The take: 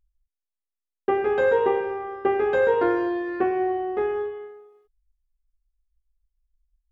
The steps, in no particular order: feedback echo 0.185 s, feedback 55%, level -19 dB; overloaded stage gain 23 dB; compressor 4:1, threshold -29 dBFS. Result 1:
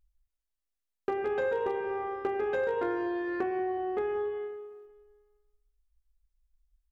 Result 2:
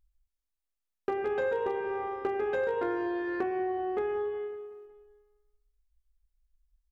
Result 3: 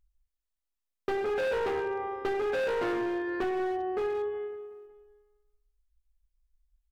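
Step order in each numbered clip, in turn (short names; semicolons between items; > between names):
compressor > feedback echo > overloaded stage; feedback echo > compressor > overloaded stage; feedback echo > overloaded stage > compressor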